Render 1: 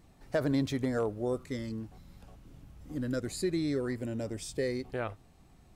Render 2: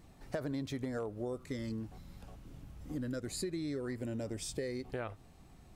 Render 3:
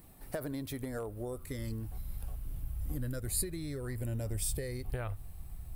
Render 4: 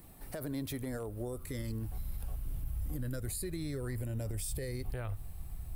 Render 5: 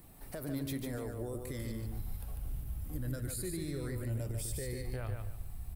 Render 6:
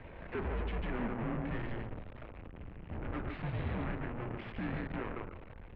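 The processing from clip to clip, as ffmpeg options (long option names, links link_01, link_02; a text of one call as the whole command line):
ffmpeg -i in.wav -af "acompressor=threshold=-37dB:ratio=5,volume=1.5dB" out.wav
ffmpeg -i in.wav -af "asubboost=boost=10:cutoff=84,aexciter=amount=7.8:drive=5.3:freq=9100" out.wav
ffmpeg -i in.wav -filter_complex "[0:a]alimiter=level_in=7dB:limit=-24dB:level=0:latency=1:release=35,volume=-7dB,acrossover=split=360|3000[link_01][link_02][link_03];[link_02]acompressor=threshold=-43dB:ratio=6[link_04];[link_01][link_04][link_03]amix=inputs=3:normalize=0,volume=2dB" out.wav
ffmpeg -i in.wav -af "flanger=delay=6.4:depth=8.4:regen=88:speed=0.94:shape=triangular,aecho=1:1:146|292|438:0.562|0.146|0.038,volume=3dB" out.wav
ffmpeg -i in.wav -af "aeval=exprs='(tanh(282*val(0)+0.5)-tanh(0.5))/282':channel_layout=same,bandreject=frequency=53.43:width_type=h:width=4,bandreject=frequency=106.86:width_type=h:width=4,bandreject=frequency=160.29:width_type=h:width=4,bandreject=frequency=213.72:width_type=h:width=4,bandreject=frequency=267.15:width_type=h:width=4,bandreject=frequency=320.58:width_type=h:width=4,bandreject=frequency=374.01:width_type=h:width=4,bandreject=frequency=427.44:width_type=h:width=4,bandreject=frequency=480.87:width_type=h:width=4,bandreject=frequency=534.3:width_type=h:width=4,bandreject=frequency=587.73:width_type=h:width=4,bandreject=frequency=641.16:width_type=h:width=4,bandreject=frequency=694.59:width_type=h:width=4,bandreject=frequency=748.02:width_type=h:width=4,bandreject=frequency=801.45:width_type=h:width=4,bandreject=frequency=854.88:width_type=h:width=4,bandreject=frequency=908.31:width_type=h:width=4,bandreject=frequency=961.74:width_type=h:width=4,bandreject=frequency=1015.17:width_type=h:width=4,bandreject=frequency=1068.6:width_type=h:width=4,bandreject=frequency=1122.03:width_type=h:width=4,bandreject=frequency=1175.46:width_type=h:width=4,bandreject=frequency=1228.89:width_type=h:width=4,bandreject=frequency=1282.32:width_type=h:width=4,bandreject=frequency=1335.75:width_type=h:width=4,bandreject=frequency=1389.18:width_type=h:width=4,bandreject=frequency=1442.61:width_type=h:width=4,bandreject=frequency=1496.04:width_type=h:width=4,bandreject=frequency=1549.47:width_type=h:width=4,bandreject=frequency=1602.9:width_type=h:width=4,bandreject=frequency=1656.33:width_type=h:width=4,bandreject=frequency=1709.76:width_type=h:width=4,bandreject=frequency=1763.19:width_type=h:width=4,highpass=frequency=190:width_type=q:width=0.5412,highpass=frequency=190:width_type=q:width=1.307,lowpass=frequency=2900:width_type=q:width=0.5176,lowpass=frequency=2900:width_type=q:width=0.7071,lowpass=frequency=2900:width_type=q:width=1.932,afreqshift=-220,volume=17.5dB" out.wav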